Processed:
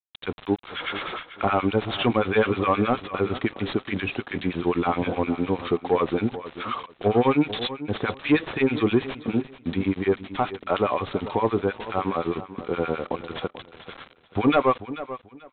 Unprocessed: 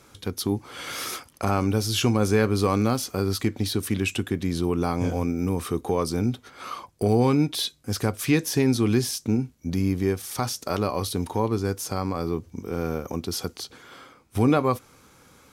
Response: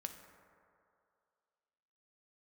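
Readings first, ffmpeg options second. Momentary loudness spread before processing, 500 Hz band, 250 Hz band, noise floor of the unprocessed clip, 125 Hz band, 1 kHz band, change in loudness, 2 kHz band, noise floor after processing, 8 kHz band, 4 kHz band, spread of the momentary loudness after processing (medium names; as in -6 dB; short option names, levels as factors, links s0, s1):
10 LU, +2.0 dB, -0.5 dB, -55 dBFS, -6.0 dB, +4.0 dB, 0.0 dB, +4.0 dB, -54 dBFS, under -40 dB, -2.5 dB, 12 LU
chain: -filter_complex "[0:a]aemphasis=mode=production:type=75fm,acrossover=split=1200[s0][s1];[s0]aeval=exprs='val(0)*(1-1/2+1/2*cos(2*PI*9.6*n/s))':c=same[s2];[s1]aeval=exprs='val(0)*(1-1/2-1/2*cos(2*PI*9.6*n/s))':c=same[s3];[s2][s3]amix=inputs=2:normalize=0,asplit=2[s4][s5];[s5]highpass=f=720:p=1,volume=10,asoftclip=type=tanh:threshold=0.562[s6];[s4][s6]amix=inputs=2:normalize=0,lowpass=f=1400:p=1,volume=0.501,aresample=8000,aeval=exprs='val(0)*gte(abs(val(0)),0.0133)':c=same,aresample=44100,aecho=1:1:438|876|1314:0.2|0.0459|0.0106"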